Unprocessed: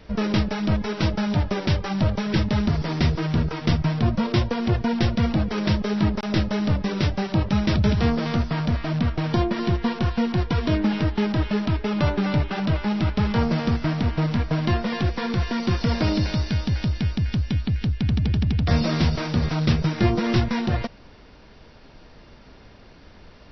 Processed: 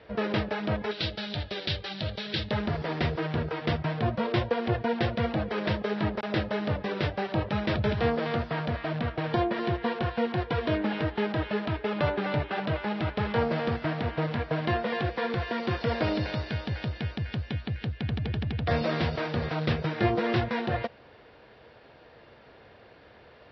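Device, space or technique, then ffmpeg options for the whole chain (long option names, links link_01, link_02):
guitar cabinet: -filter_complex "[0:a]asettb=1/sr,asplit=3[link_01][link_02][link_03];[link_01]atrim=end=0.914[link_04];[link_02]atrim=start=0.91:end=2.51,asetpts=PTS-STARTPTS,afade=type=in:duration=0.004:curve=qsin,afade=type=out:start_time=1.596:duration=0.004:curve=qsin,equalizer=frequency=125:width_type=o:width=1:gain=-4,equalizer=frequency=250:width_type=o:width=1:gain=-5,equalizer=frequency=500:width_type=o:width=1:gain=-5,equalizer=frequency=1000:width_type=o:width=1:gain=-11,equalizer=frequency=2000:width_type=o:width=1:gain=-3,equalizer=frequency=4000:width_type=o:width=1:gain=11[link_05];[link_03]atrim=start=2.506[link_06];[link_04][link_05]acrossfade=duration=0.004:curve1=hsin:curve2=qsin[link_07];[link_07][link_06]acrossfade=duration=0.004:curve1=qsin:curve2=hsin,highpass=110,equalizer=frequency=180:width_type=q:width=4:gain=-9,equalizer=frequency=260:width_type=q:width=4:gain=-6,equalizer=frequency=490:width_type=q:width=4:gain=6,equalizer=frequency=710:width_type=q:width=4:gain=4,equalizer=frequency=1700:width_type=q:width=4:gain=4,lowpass=frequency=4000:width=0.5412,lowpass=frequency=4000:width=1.3066,volume=-3.5dB"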